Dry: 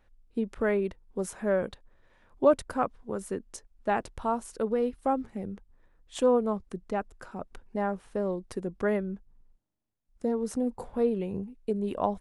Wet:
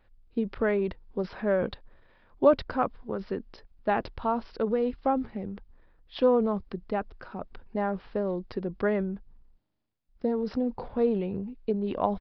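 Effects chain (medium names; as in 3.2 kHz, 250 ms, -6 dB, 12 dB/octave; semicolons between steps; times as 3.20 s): transient shaper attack +2 dB, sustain +6 dB; resampled via 11.025 kHz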